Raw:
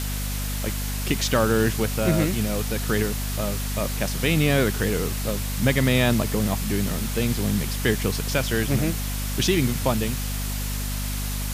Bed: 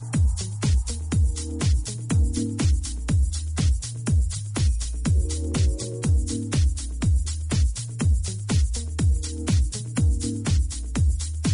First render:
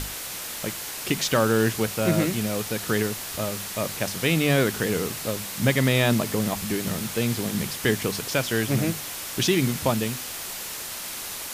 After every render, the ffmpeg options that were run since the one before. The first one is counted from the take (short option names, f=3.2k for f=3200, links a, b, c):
-af "bandreject=f=50:t=h:w=6,bandreject=f=100:t=h:w=6,bandreject=f=150:t=h:w=6,bandreject=f=200:t=h:w=6,bandreject=f=250:t=h:w=6"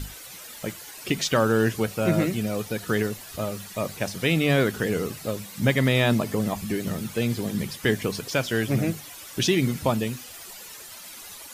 -af "afftdn=nr=12:nf=-35"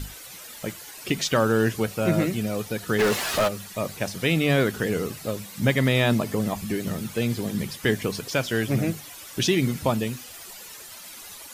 -filter_complex "[0:a]asplit=3[a][b][c];[a]afade=t=out:st=2.98:d=0.02[d];[b]asplit=2[e][f];[f]highpass=f=720:p=1,volume=32dB,asoftclip=type=tanh:threshold=-12.5dB[g];[e][g]amix=inputs=2:normalize=0,lowpass=f=2.5k:p=1,volume=-6dB,afade=t=in:st=2.98:d=0.02,afade=t=out:st=3.47:d=0.02[h];[c]afade=t=in:st=3.47:d=0.02[i];[d][h][i]amix=inputs=3:normalize=0"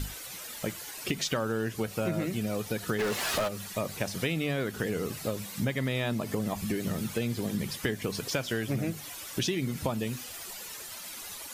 -af "acompressor=threshold=-27dB:ratio=6"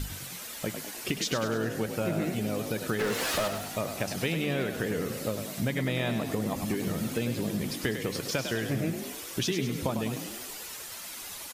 -filter_complex "[0:a]asplit=8[a][b][c][d][e][f][g][h];[b]adelay=101,afreqshift=43,volume=-8dB[i];[c]adelay=202,afreqshift=86,volume=-13.2dB[j];[d]adelay=303,afreqshift=129,volume=-18.4dB[k];[e]adelay=404,afreqshift=172,volume=-23.6dB[l];[f]adelay=505,afreqshift=215,volume=-28.8dB[m];[g]adelay=606,afreqshift=258,volume=-34dB[n];[h]adelay=707,afreqshift=301,volume=-39.2dB[o];[a][i][j][k][l][m][n][o]amix=inputs=8:normalize=0"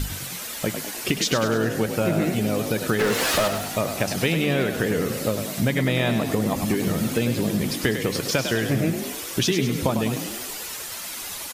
-af "volume=7.5dB"